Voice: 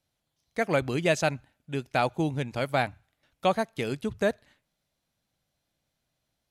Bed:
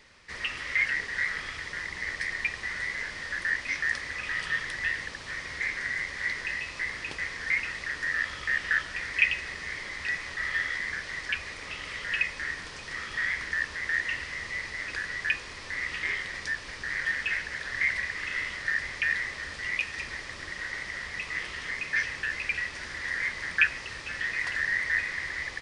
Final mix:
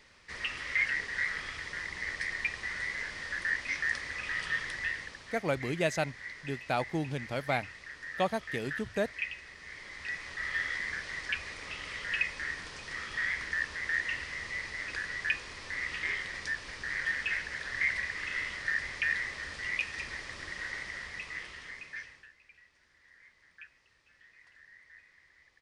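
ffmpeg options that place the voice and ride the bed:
-filter_complex "[0:a]adelay=4750,volume=-5.5dB[a];[1:a]volume=6.5dB,afade=t=out:st=4.69:d=0.76:silence=0.334965,afade=t=in:st=9.55:d=1.17:silence=0.334965,afade=t=out:st=20.69:d=1.64:silence=0.0501187[b];[a][b]amix=inputs=2:normalize=0"

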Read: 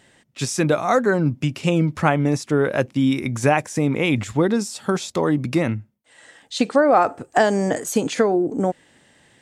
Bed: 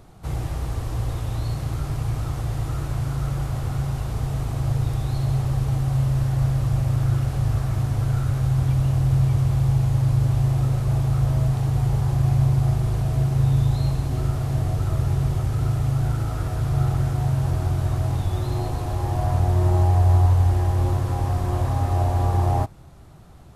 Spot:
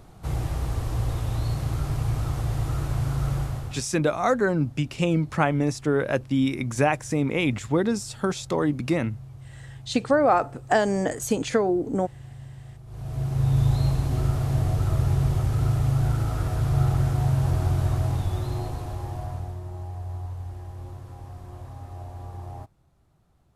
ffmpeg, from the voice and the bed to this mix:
-filter_complex "[0:a]adelay=3350,volume=-4dB[a];[1:a]volume=22dB,afade=t=out:st=3.35:d=0.52:silence=0.0749894,afade=t=in:st=12.86:d=0.83:silence=0.0749894,afade=t=out:st=17.83:d=1.79:silence=0.141254[b];[a][b]amix=inputs=2:normalize=0"

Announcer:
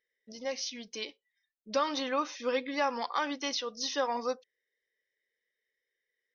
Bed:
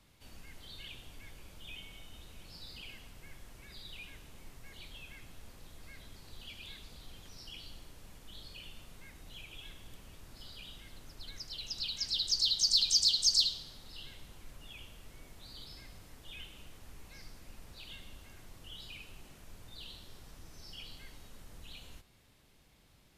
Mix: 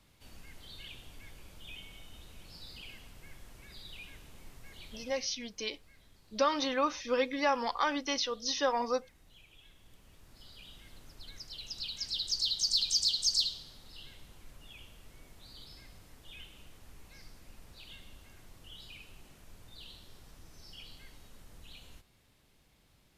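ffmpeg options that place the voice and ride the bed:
-filter_complex "[0:a]adelay=4650,volume=1dB[a];[1:a]volume=8dB,afade=t=out:st=4.97:d=0.31:silence=0.316228,afade=t=in:st=9.7:d=1.21:silence=0.398107[b];[a][b]amix=inputs=2:normalize=0"

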